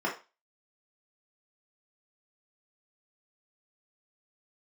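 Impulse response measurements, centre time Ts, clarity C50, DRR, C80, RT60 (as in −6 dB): 22 ms, 9.0 dB, −4.5 dB, 15.5 dB, 0.30 s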